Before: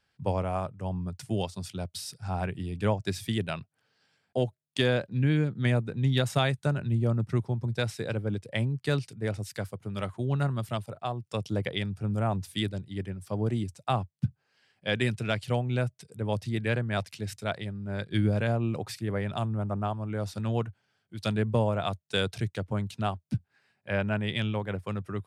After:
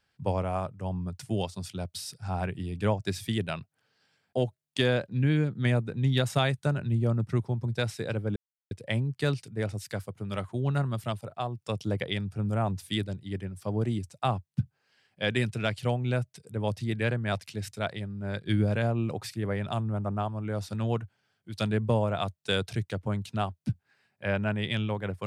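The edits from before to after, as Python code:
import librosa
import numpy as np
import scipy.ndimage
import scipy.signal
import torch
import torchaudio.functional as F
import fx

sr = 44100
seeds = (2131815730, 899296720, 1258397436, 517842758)

y = fx.edit(x, sr, fx.insert_silence(at_s=8.36, length_s=0.35), tone=tone)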